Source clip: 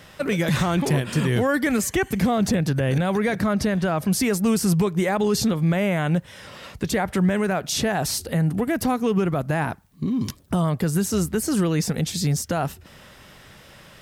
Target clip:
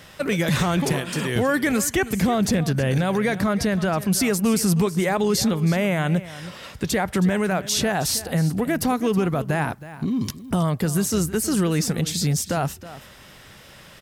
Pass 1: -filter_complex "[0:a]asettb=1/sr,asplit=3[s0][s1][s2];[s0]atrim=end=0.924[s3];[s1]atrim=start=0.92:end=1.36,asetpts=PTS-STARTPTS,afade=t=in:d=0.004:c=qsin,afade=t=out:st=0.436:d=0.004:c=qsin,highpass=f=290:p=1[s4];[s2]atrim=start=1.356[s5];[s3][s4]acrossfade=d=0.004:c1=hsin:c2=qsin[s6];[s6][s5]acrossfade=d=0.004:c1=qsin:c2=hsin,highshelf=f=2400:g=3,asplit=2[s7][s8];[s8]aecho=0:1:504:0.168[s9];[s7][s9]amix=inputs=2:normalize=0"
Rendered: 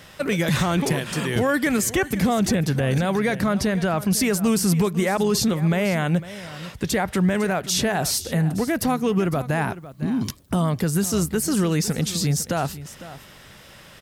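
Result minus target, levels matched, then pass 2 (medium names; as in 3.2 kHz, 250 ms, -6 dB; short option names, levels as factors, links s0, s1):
echo 184 ms late
-filter_complex "[0:a]asettb=1/sr,asplit=3[s0][s1][s2];[s0]atrim=end=0.924[s3];[s1]atrim=start=0.92:end=1.36,asetpts=PTS-STARTPTS,afade=t=in:d=0.004:c=qsin,afade=t=out:st=0.436:d=0.004:c=qsin,highpass=f=290:p=1[s4];[s2]atrim=start=1.356[s5];[s3][s4]acrossfade=d=0.004:c1=hsin:c2=qsin[s6];[s6][s5]acrossfade=d=0.004:c1=qsin:c2=hsin,highshelf=f=2400:g=3,asplit=2[s7][s8];[s8]aecho=0:1:320:0.168[s9];[s7][s9]amix=inputs=2:normalize=0"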